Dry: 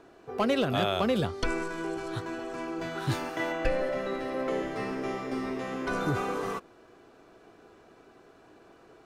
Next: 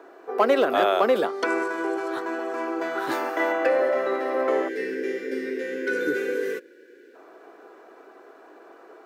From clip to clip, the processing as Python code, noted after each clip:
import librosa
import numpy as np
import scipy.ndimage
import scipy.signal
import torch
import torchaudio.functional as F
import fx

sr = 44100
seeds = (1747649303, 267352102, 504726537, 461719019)

y = fx.spec_box(x, sr, start_s=4.68, length_s=2.47, low_hz=580.0, high_hz=1400.0, gain_db=-27)
y = scipy.signal.sosfilt(scipy.signal.butter(4, 330.0, 'highpass', fs=sr, output='sos'), y)
y = fx.band_shelf(y, sr, hz=5200.0, db=-8.5, octaves=2.4)
y = y * 10.0 ** (8.5 / 20.0)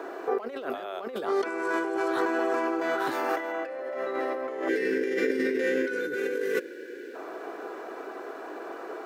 y = fx.over_compress(x, sr, threshold_db=-33.0, ratio=-1.0)
y = y * 10.0 ** (3.0 / 20.0)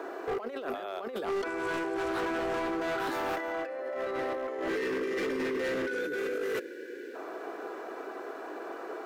y = np.clip(x, -10.0 ** (-27.0 / 20.0), 10.0 ** (-27.0 / 20.0))
y = y * 10.0 ** (-1.5 / 20.0)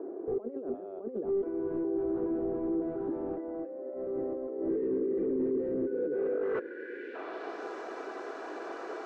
y = fx.filter_sweep_lowpass(x, sr, from_hz=360.0, to_hz=6200.0, start_s=5.86, end_s=7.66, q=1.5)